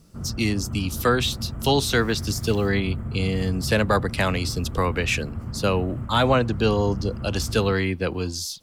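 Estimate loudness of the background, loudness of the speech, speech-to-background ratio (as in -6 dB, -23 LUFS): -33.0 LUFS, -24.0 LUFS, 9.0 dB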